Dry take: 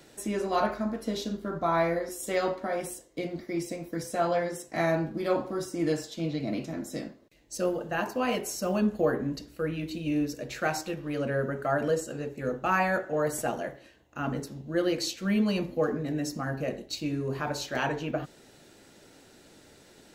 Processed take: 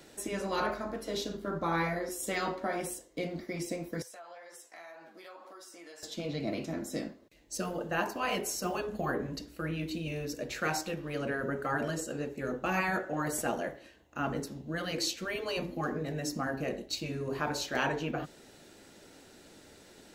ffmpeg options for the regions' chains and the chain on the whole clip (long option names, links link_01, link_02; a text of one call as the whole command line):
ffmpeg -i in.wav -filter_complex "[0:a]asettb=1/sr,asplit=3[link_01][link_02][link_03];[link_01]atrim=end=4.024[link_04];[link_02]atrim=start=4.02:end=6.03,asetpts=PTS-STARTPTS,afade=type=in:duration=0.004:curve=qsin,afade=type=out:start_time=2.006:duration=0.004:curve=qsin,highpass=770,flanger=delay=6.6:depth=6.5:regen=44:speed=2:shape=triangular,acompressor=threshold=-47dB:ratio=5:attack=3.2:release=140:knee=1:detection=peak[link_05];[link_03]atrim=start=6.026[link_06];[link_04][link_05]acrossfade=duration=0.004:curve1=hsin:curve2=qsin[link_07];[link_07][link_06]acrossfade=duration=0.004:curve1=qsin:curve2=hsin,afftfilt=real='re*lt(hypot(re,im),0.251)':imag='im*lt(hypot(re,im),0.251)':win_size=1024:overlap=0.75,equalizer=frequency=130:width=6.7:gain=-7.5" out.wav